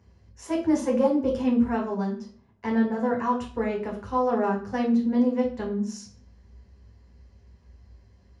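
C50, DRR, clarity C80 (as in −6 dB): 7.5 dB, −2.5 dB, 12.5 dB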